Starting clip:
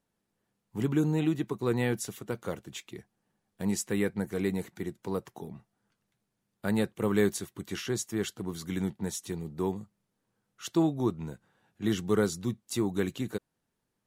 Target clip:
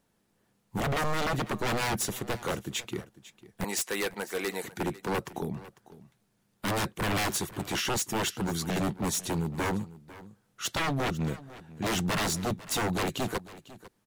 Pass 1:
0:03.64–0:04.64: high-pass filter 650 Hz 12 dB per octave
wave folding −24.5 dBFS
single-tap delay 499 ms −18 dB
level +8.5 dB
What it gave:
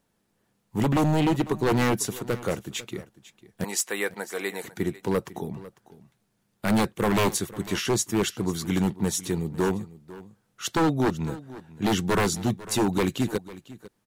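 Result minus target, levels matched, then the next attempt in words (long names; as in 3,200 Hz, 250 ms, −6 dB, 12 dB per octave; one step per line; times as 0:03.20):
wave folding: distortion −13 dB
0:03.64–0:04.64: high-pass filter 650 Hz 12 dB per octave
wave folding −32 dBFS
single-tap delay 499 ms −18 dB
level +8.5 dB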